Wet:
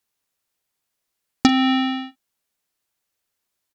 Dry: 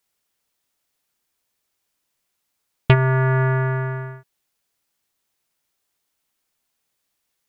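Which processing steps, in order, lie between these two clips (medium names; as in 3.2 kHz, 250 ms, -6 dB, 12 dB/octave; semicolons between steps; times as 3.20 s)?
delay 82 ms -17.5 dB; speed mistake 7.5 ips tape played at 15 ips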